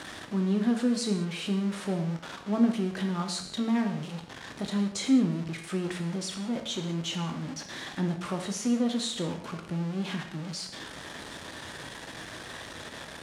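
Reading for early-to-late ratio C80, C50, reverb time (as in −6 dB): 10.0 dB, 7.5 dB, non-exponential decay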